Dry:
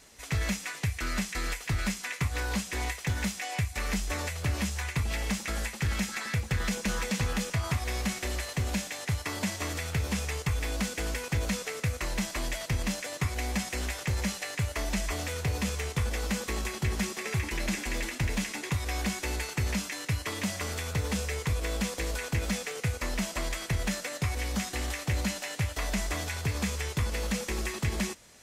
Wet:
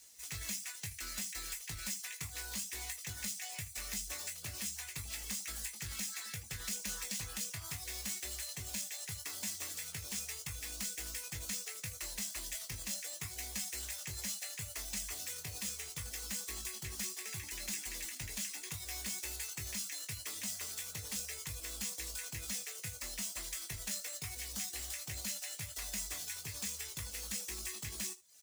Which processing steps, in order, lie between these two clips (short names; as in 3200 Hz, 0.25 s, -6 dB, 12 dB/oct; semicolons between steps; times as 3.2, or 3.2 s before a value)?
median filter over 3 samples; pre-emphasis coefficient 0.8; reverb removal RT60 0.57 s; high shelf 3100 Hz +8 dB; early reflections 19 ms -6.5 dB, 79 ms -17 dB; gain -5 dB